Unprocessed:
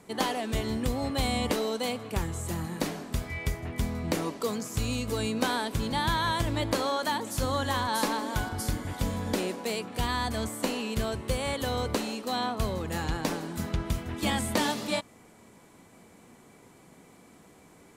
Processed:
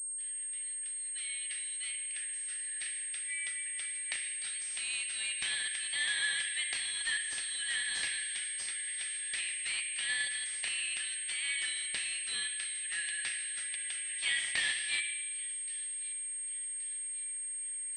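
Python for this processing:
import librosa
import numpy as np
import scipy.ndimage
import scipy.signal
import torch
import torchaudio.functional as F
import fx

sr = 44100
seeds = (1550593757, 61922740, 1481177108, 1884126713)

p1 = fx.fade_in_head(x, sr, length_s=4.73)
p2 = 10.0 ** (-24.5 / 20.0) * np.tanh(p1 / 10.0 ** (-24.5 / 20.0))
p3 = p1 + F.gain(torch.from_numpy(p2), -11.5).numpy()
p4 = scipy.signal.sosfilt(scipy.signal.cheby1(8, 1.0, 1700.0, 'highpass', fs=sr, output='sos'), p3)
p5 = p4 + fx.echo_wet_highpass(p4, sr, ms=1124, feedback_pct=43, hz=2200.0, wet_db=-18.5, dry=0)
p6 = fx.rev_spring(p5, sr, rt60_s=1.4, pass_ms=(30, 48), chirp_ms=50, drr_db=2.5)
p7 = fx.pwm(p6, sr, carrier_hz=8500.0)
y = F.gain(torch.from_numpy(p7), 1.5).numpy()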